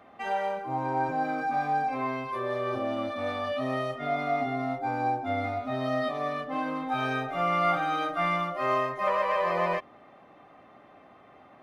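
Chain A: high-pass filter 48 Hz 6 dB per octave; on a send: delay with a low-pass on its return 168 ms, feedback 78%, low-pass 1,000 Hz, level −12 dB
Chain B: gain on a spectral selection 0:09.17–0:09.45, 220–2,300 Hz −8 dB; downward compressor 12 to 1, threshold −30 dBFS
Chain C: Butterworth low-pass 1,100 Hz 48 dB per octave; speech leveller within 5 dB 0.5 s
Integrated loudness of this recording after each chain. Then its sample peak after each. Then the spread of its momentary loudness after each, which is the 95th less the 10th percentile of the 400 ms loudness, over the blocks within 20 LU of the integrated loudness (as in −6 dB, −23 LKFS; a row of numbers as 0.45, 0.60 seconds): −29.0, −34.5, −30.5 LKFS; −12.5, −21.5, −18.0 dBFS; 6, 20, 2 LU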